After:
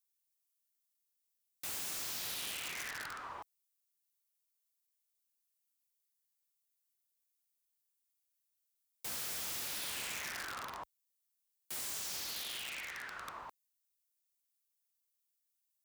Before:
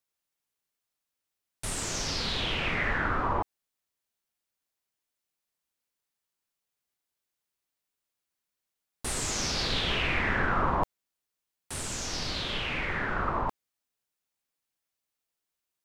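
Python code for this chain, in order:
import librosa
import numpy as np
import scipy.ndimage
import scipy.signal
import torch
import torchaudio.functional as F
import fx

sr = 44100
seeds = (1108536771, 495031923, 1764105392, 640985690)

y = scipy.signal.lfilter([1.0, -0.97], [1.0], x)
y = (np.mod(10.0 ** (35.5 / 20.0) * y + 1.0, 2.0) - 1.0) / 10.0 ** (35.5 / 20.0)
y = scipy.signal.sosfilt(scipy.signal.butter(2, 44.0, 'highpass', fs=sr, output='sos'), y)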